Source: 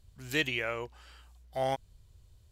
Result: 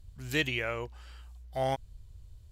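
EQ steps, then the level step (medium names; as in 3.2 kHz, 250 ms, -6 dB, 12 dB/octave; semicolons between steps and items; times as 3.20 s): bass shelf 110 Hz +10.5 dB; 0.0 dB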